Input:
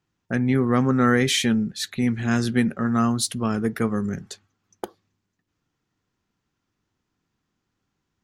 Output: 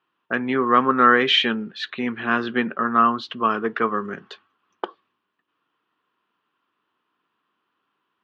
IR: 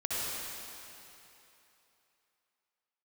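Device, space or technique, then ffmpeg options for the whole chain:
phone earpiece: -filter_complex "[0:a]asettb=1/sr,asplit=3[s0][s1][s2];[s0]atrim=end=2.074[s3];[s1]atrim=start=2.07:end=3.5,asetpts=PTS-STARTPTS,afade=t=in:d=0.004:c=qsin,afade=t=out:st=1.426:d=0.004:c=qsin,aemphasis=mode=reproduction:type=50fm[s4];[s2]atrim=start=3.496[s5];[s3][s4]acrossfade=d=0.004:c1=hsin:c2=qsin[s6];[s6][s5]acrossfade=d=0.004:c1=qsin:c2=hsin,highpass=480,equalizer=f=540:t=q:w=4:g=-4,equalizer=f=770:t=q:w=4:g=-6,equalizer=f=1100:t=q:w=4:g=7,equalizer=f=2100:t=q:w=4:g=-7,equalizer=f=3000:t=q:w=4:g=4,lowpass=f=3100:w=0.5412,lowpass=f=3100:w=1.3066,volume=2.51"

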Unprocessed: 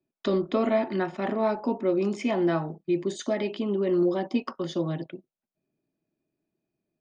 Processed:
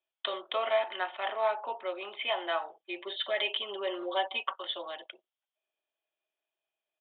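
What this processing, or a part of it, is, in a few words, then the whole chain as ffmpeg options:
musical greeting card: -filter_complex "[0:a]aresample=8000,aresample=44100,highpass=f=650:w=0.5412,highpass=f=650:w=1.3066,equalizer=f=3200:t=o:w=0.41:g=11,asplit=3[s0][s1][s2];[s0]afade=t=out:st=2.84:d=0.02[s3];[s1]aecho=1:1:5.2:0.94,afade=t=in:st=2.84:d=0.02,afade=t=out:st=4.55:d=0.02[s4];[s2]afade=t=in:st=4.55:d=0.02[s5];[s3][s4][s5]amix=inputs=3:normalize=0"

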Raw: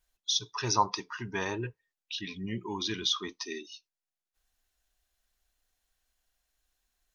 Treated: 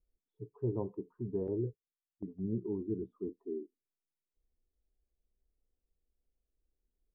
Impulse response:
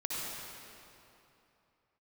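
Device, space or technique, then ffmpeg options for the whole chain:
under water: -filter_complex "[0:a]lowpass=f=450:w=0.5412,lowpass=f=450:w=1.3066,equalizer=f=450:t=o:w=0.59:g=5,asettb=1/sr,asplit=3[s0][s1][s2];[s0]atrim=end=1.474[s3];[s1]atrim=start=1.47:end=2.78,asetpts=PTS-STARTPTS,afade=t=in:d=0.004:c=qsin,afade=t=out:st=1.306:d=0.004:c=qsin,agate=range=0.224:threshold=0.00891:ratio=16:detection=peak[s4];[s2]atrim=start=2.776[s5];[s3][s4]acrossfade=d=0.004:c1=hsin:c2=qsin[s6];[s6][s5]acrossfade=d=0.004:c1=qsin:c2=hsin"

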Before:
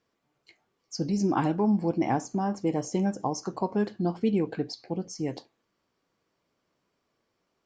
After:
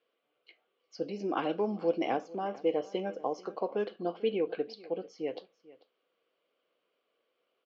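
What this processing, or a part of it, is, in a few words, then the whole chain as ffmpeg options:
phone earpiece: -filter_complex "[0:a]asettb=1/sr,asplit=3[s0][s1][s2];[s0]atrim=end=1.494[s3];[s1]atrim=start=1.49:end=2.17,asetpts=PTS-STARTPTS,afade=t=in:d=0.004:c=qsin,afade=t=out:st=0.676:d=0.004:c=qsin,bass=f=250:g=3,treble=f=4000:g=13[s4];[s2]atrim=start=2.166[s5];[s3][s4]acrossfade=d=0.004:c1=hsin:c2=qsin[s6];[s6][s5]acrossfade=d=0.004:c1=qsin:c2=hsin,highpass=480,equalizer=f=490:t=q:w=4:g=8,equalizer=f=910:t=q:w=4:g=-10,equalizer=f=1800:t=q:w=4:g=-6,equalizer=f=3000:t=q:w=4:g=6,lowpass=f=3600:w=0.5412,lowpass=f=3600:w=1.3066,aecho=1:1:442:0.0944"

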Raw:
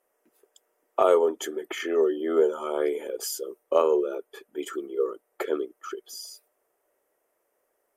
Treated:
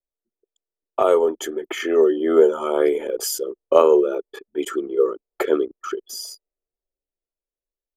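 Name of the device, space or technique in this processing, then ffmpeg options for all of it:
voice memo with heavy noise removal: -af "anlmdn=0.0398,dynaudnorm=f=470:g=7:m=2.37,lowshelf=f=150:g=9.5,volume=1.12"

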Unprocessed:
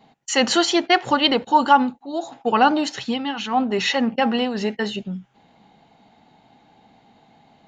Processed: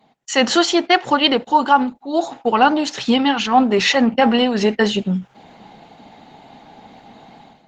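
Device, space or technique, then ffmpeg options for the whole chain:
video call: -af "highpass=140,dynaudnorm=f=110:g=5:m=5.01,volume=0.841" -ar 48000 -c:a libopus -b:a 16k

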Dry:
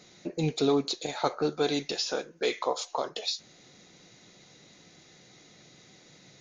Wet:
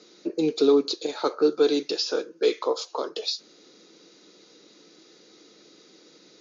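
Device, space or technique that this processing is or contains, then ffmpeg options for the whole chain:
television speaker: -af "highpass=f=210:w=0.5412,highpass=f=210:w=1.3066,equalizer=f=320:t=q:w=4:g=8,equalizer=f=450:t=q:w=4:g=8,equalizer=f=730:t=q:w=4:g=-6,equalizer=f=1300:t=q:w=4:g=4,equalizer=f=2000:t=q:w=4:g=-6,equalizer=f=4800:t=q:w=4:g=6,lowpass=f=6700:w=0.5412,lowpass=f=6700:w=1.3066"

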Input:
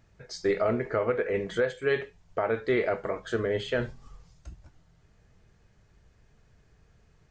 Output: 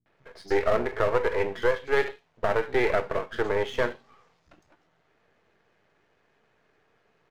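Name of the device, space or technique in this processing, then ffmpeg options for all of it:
crystal radio: -filter_complex "[0:a]highpass=310,lowpass=3300,acrossover=split=180|4700[s0][s1][s2];[s1]adelay=60[s3];[s2]adelay=170[s4];[s0][s3][s4]amix=inputs=3:normalize=0,aeval=exprs='if(lt(val(0),0),0.251*val(0),val(0))':c=same,volume=2.24"

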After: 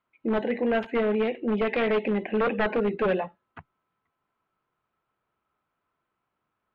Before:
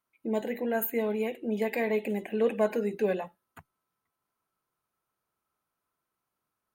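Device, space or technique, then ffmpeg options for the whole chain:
synthesiser wavefolder: -af "aeval=exprs='0.0631*(abs(mod(val(0)/0.0631+3,4)-2)-1)':c=same,lowpass=f=3200:w=0.5412,lowpass=f=3200:w=1.3066,volume=2"

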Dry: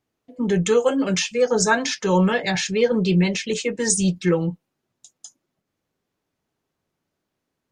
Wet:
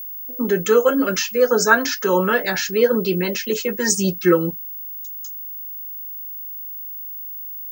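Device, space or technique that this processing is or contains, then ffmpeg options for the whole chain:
old television with a line whistle: -filter_complex "[0:a]asettb=1/sr,asplit=3[s0][s1][s2];[s0]atrim=end=3.664[s3];[s1]atrim=start=3.66:end=4.51,asetpts=PTS-STARTPTS,afade=t=in:d=0.004:c=qsin,afade=t=out:st=0.846:d=0.004:c=qsin,aecho=1:1:5.5:0.64,atrim=end_sample=37485[s4];[s2]atrim=start=4.506[s5];[s3][s4]acrossfade=d=0.004:c1=hsin:c2=qsin[s6];[s6][s5]acrossfade=d=0.004:c1=qsin:c2=hsin,highpass=f=170:w=0.5412,highpass=f=170:w=1.3066,equalizer=f=180:t=q:w=4:g=-9,equalizer=f=800:t=q:w=4:g=-7,equalizer=f=1400:t=q:w=4:g=8,equalizer=f=2300:t=q:w=4:g=-6,equalizer=f=3500:t=q:w=4:g=-8,lowpass=f=6700:w=0.5412,lowpass=f=6700:w=1.3066,aeval=exprs='val(0)+0.0224*sin(2*PI*15625*n/s)':c=same,volume=1.5"

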